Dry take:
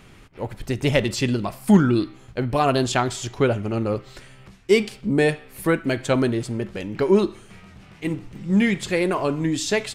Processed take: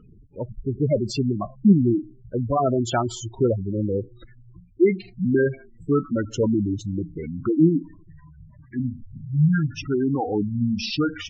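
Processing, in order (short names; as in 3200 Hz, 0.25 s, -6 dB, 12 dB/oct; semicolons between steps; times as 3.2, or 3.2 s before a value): speed glide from 105% -> 71%; spectral gate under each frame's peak -10 dB strong; Vorbis 64 kbps 16000 Hz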